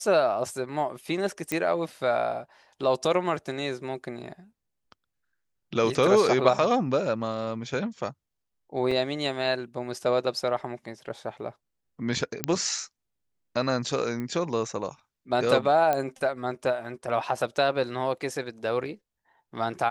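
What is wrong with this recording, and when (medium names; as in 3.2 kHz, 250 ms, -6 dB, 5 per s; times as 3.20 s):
1.52 s: pop -13 dBFS
8.91 s: dropout 4.7 ms
12.44 s: pop -8 dBFS
14.20 s: pop -22 dBFS
15.93 s: pop -13 dBFS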